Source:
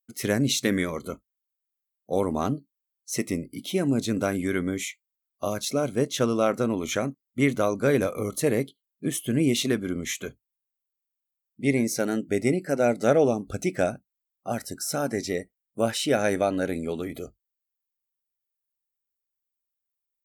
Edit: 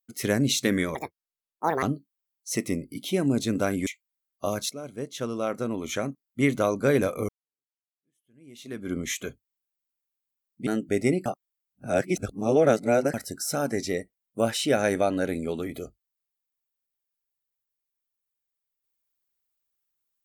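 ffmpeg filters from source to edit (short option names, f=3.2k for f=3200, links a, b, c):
-filter_complex "[0:a]asplit=9[a][b][c][d][e][f][g][h][i];[a]atrim=end=0.954[j];[b]atrim=start=0.95:end=2.44,asetpts=PTS-STARTPTS,asetrate=74970,aresample=44100,atrim=end_sample=38652,asetpts=PTS-STARTPTS[k];[c]atrim=start=2.436:end=4.482[l];[d]atrim=start=4.858:end=5.69,asetpts=PTS-STARTPTS,afade=t=out:st=0.828:d=0.004:c=hsin:silence=0.188365[m];[e]atrim=start=5.69:end=8.28,asetpts=PTS-STARTPTS,afade=t=in:d=1.89:silence=0.188365,afade=t=out:st=2.586:d=0.004:c=hsin[n];[f]atrim=start=8.28:end=11.662,asetpts=PTS-STARTPTS,afade=t=in:d=1.64:c=exp[o];[g]atrim=start=12.068:end=12.662[p];[h]atrim=start=12.658:end=14.542,asetpts=PTS-STARTPTS,areverse[q];[i]atrim=start=14.538[r];[j][k]acrossfade=d=0.004:c1=hsin:c2=hsin[s];[s][l]acrossfade=d=0.004:c1=hsin:c2=hsin[t];[m][n][o]concat=n=3:v=0:a=1[u];[t][u]acrossfade=d=0.004:c1=hsin:c2=hsin[v];[v][p]acrossfade=d=0.004:c1=hsin:c2=hsin[w];[w][q]acrossfade=d=0.004:c1=hsin:c2=hsin[x];[x][r]acrossfade=d=0.004:c1=hsin:c2=hsin"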